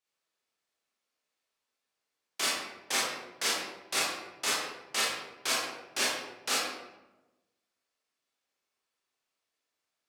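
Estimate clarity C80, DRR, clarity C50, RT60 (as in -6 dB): 3.0 dB, -6.5 dB, 0.5 dB, 1.0 s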